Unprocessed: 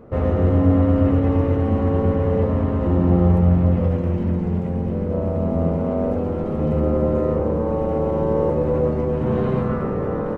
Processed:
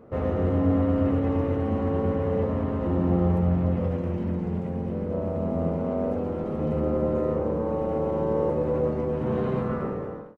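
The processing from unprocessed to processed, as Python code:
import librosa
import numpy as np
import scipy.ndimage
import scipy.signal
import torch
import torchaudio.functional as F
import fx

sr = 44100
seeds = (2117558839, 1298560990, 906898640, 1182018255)

y = fx.fade_out_tail(x, sr, length_s=0.52)
y = fx.low_shelf(y, sr, hz=85.0, db=-8.5)
y = y * librosa.db_to_amplitude(-4.5)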